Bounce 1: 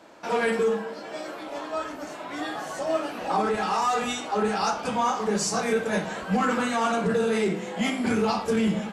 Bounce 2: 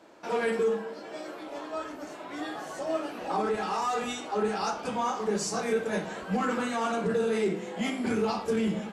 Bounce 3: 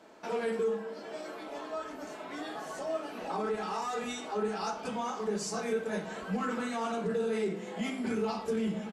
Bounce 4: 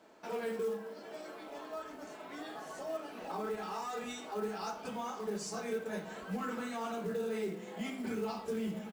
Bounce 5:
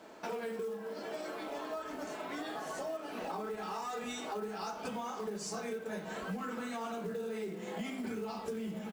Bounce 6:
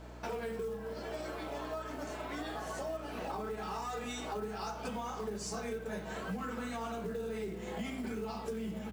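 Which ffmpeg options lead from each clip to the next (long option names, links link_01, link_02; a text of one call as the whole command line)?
ffmpeg -i in.wav -af "equalizer=frequency=370:width_type=o:width=0.79:gain=4.5,volume=-5.5dB" out.wav
ffmpeg -i in.wav -filter_complex "[0:a]aecho=1:1:4.6:0.33,asplit=2[link_01][link_02];[link_02]acompressor=threshold=-36dB:ratio=6,volume=2.5dB[link_03];[link_01][link_03]amix=inputs=2:normalize=0,volume=-8.5dB" out.wav
ffmpeg -i in.wav -af "acrusher=bits=6:mode=log:mix=0:aa=0.000001,volume=-5dB" out.wav
ffmpeg -i in.wav -af "acompressor=threshold=-44dB:ratio=6,volume=7.5dB" out.wav
ffmpeg -i in.wav -af "aeval=exprs='val(0)+0.00355*(sin(2*PI*60*n/s)+sin(2*PI*2*60*n/s)/2+sin(2*PI*3*60*n/s)/3+sin(2*PI*4*60*n/s)/4+sin(2*PI*5*60*n/s)/5)':channel_layout=same" out.wav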